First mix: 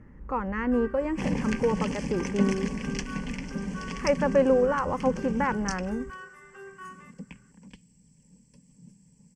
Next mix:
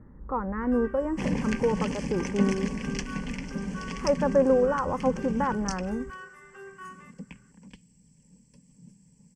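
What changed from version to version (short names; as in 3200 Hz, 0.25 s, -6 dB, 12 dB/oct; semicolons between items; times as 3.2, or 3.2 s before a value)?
speech: add LPF 1500 Hz 24 dB/oct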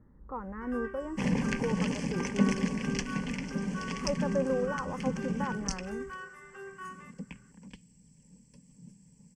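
speech -9.0 dB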